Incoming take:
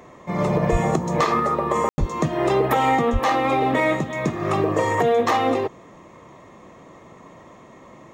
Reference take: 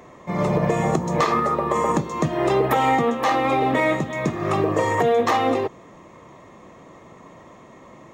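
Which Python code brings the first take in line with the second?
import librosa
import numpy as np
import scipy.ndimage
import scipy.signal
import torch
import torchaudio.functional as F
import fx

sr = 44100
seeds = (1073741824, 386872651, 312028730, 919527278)

y = fx.highpass(x, sr, hz=140.0, slope=24, at=(0.71, 0.83), fade=0.02)
y = fx.highpass(y, sr, hz=140.0, slope=24, at=(1.99, 2.11), fade=0.02)
y = fx.highpass(y, sr, hz=140.0, slope=24, at=(3.12, 3.24), fade=0.02)
y = fx.fix_ambience(y, sr, seeds[0], print_start_s=7.43, print_end_s=7.93, start_s=1.89, end_s=1.98)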